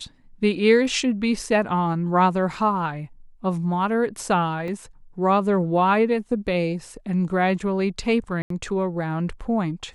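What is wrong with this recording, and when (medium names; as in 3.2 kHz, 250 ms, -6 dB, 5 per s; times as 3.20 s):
4.68 s: dropout 2.1 ms
8.42–8.50 s: dropout 83 ms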